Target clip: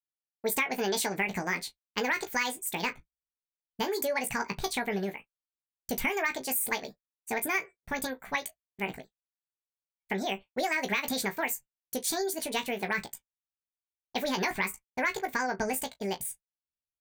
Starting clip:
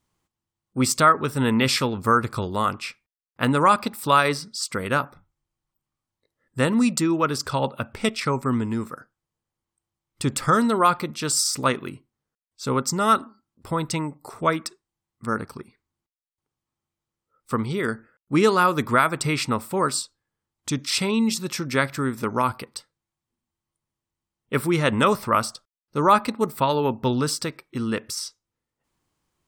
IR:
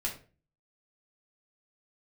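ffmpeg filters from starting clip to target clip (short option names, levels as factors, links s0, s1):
-af "agate=range=0.0224:threshold=0.0112:ratio=3:detection=peak,aecho=1:1:27|60:0.473|0.133,acompressor=threshold=0.112:ratio=6,asubboost=boost=6:cutoff=66,asetrate=76440,aresample=44100,volume=0.531"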